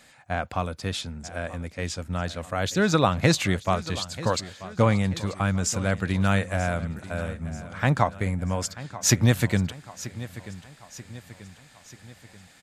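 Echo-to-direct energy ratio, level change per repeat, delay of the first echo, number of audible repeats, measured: -15.0 dB, -6.0 dB, 936 ms, 4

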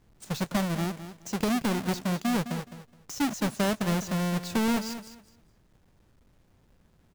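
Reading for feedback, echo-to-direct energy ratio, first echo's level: 21%, -12.0 dB, -12.0 dB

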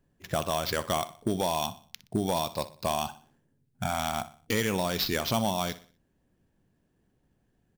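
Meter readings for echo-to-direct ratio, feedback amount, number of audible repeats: -14.5 dB, 40%, 3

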